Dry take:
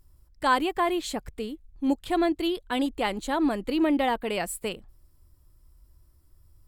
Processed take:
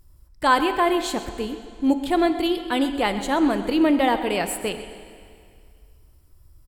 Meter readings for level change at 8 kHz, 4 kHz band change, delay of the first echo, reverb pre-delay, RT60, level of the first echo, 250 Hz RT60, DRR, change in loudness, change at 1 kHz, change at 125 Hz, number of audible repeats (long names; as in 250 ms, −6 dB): +5.0 dB, +5.0 dB, 129 ms, 25 ms, 2.2 s, −15.0 dB, 2.2 s, 8.5 dB, +5.0 dB, +5.0 dB, +5.5 dB, 1